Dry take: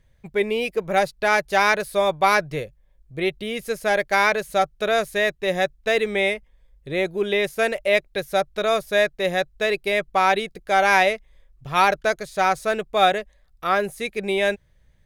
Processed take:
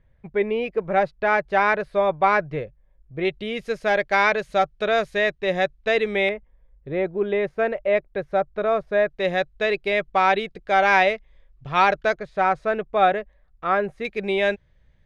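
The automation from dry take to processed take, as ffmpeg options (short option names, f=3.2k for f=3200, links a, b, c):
-af "asetnsamples=n=441:p=0,asendcmd='3.25 lowpass f 4000;6.29 lowpass f 1500;9.1 lowpass f 3700;12.15 lowpass f 2000;14.05 lowpass f 4000',lowpass=2k"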